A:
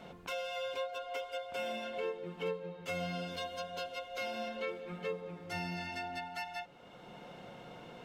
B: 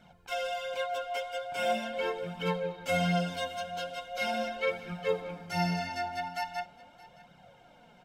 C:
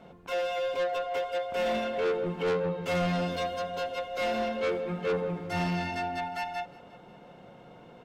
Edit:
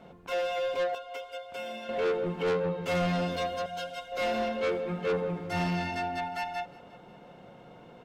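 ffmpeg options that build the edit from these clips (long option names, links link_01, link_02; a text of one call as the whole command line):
ffmpeg -i take0.wav -i take1.wav -i take2.wav -filter_complex "[2:a]asplit=3[link_01][link_02][link_03];[link_01]atrim=end=0.952[link_04];[0:a]atrim=start=0.948:end=1.892[link_05];[link_02]atrim=start=1.888:end=3.662[link_06];[1:a]atrim=start=3.658:end=4.122[link_07];[link_03]atrim=start=4.118[link_08];[link_04][link_05]acrossfade=duration=0.004:curve1=hsin:curve2=hsin[link_09];[link_09][link_06]acrossfade=duration=0.004:curve1=hsin:curve2=hsin[link_10];[link_10][link_07]acrossfade=duration=0.004:curve1=hsin:curve2=hsin[link_11];[link_11][link_08]acrossfade=duration=0.004:curve1=hsin:curve2=hsin" out.wav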